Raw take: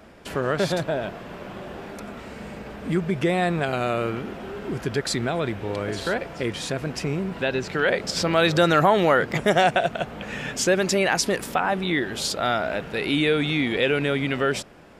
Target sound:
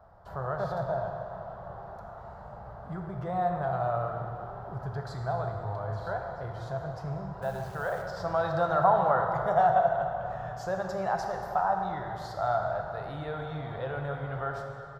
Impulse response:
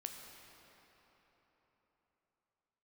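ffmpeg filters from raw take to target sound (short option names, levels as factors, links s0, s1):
-filter_complex "[0:a]firequalizer=gain_entry='entry(130,0);entry(250,-24);entry(700,2);entry(1300,-4);entry(2400,-30);entry(4100,-18);entry(9100,-29);entry(13000,-16)':delay=0.05:min_phase=1,asettb=1/sr,asplit=3[s0][s1][s2];[s0]atrim=end=7.424[s3];[s1]atrim=start=7.42:end=8.02,asetpts=PTS-STARTPTS,afade=t=in:d=0.004:c=qsin,afade=t=out:st=0.596:d=0.004:c=qsin,acrusher=bits=9:dc=4:mix=0:aa=0.000001[s4];[s2]atrim=start=8.016[s5];[s3][s4]acrossfade=d=0.004:c1=hsin:c2=qsin[s6];[s6][s5]acrossfade=d=0.004:c1=qsin:c2=hsin[s7];[1:a]atrim=start_sample=2205,asetrate=66150,aresample=44100[s8];[s7][s8]afir=irnorm=-1:irlink=0,volume=1.68"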